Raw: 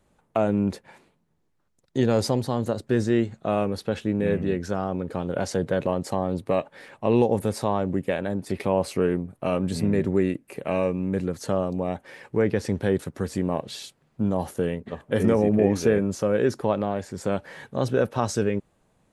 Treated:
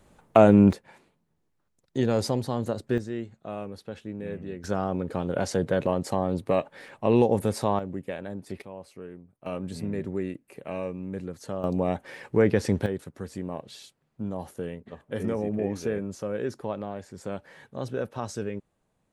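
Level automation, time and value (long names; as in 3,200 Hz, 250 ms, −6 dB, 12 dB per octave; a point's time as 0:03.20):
+7 dB
from 0:00.73 −3 dB
from 0:02.98 −11.5 dB
from 0:04.64 −0.5 dB
from 0:07.79 −8.5 dB
from 0:08.62 −19 dB
from 0:09.46 −8.5 dB
from 0:11.64 +1.5 dB
from 0:12.86 −8.5 dB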